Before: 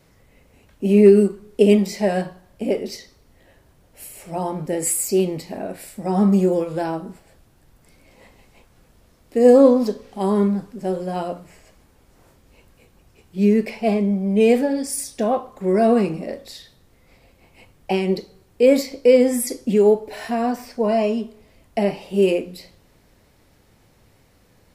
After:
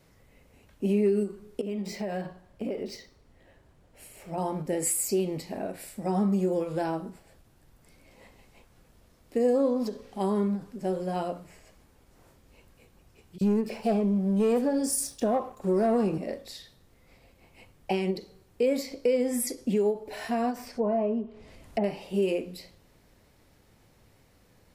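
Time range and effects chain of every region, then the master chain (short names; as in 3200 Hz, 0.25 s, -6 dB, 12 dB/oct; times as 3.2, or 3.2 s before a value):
1.61–4.38 high shelf 4500 Hz -5.5 dB + compressor 10:1, threshold -23 dBFS + decimation joined by straight lines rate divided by 2×
13.38–16.18 bell 2100 Hz -11.5 dB 0.33 oct + sample leveller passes 1 + bands offset in time highs, lows 30 ms, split 3300 Hz
20.67–21.84 treble ducked by the level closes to 1200 Hz, closed at -20 dBFS + upward compressor, threshold -36 dBFS
whole clip: compressor 3:1, threshold -19 dBFS; ending taper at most 230 dB/s; gain -4.5 dB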